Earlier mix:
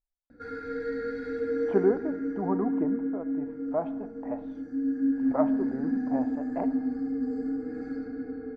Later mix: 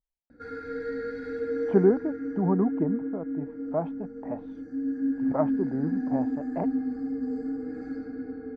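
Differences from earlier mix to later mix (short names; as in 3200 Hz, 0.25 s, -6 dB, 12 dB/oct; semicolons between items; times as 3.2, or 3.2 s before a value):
speech: add bell 160 Hz +10 dB 1.7 oct; reverb: off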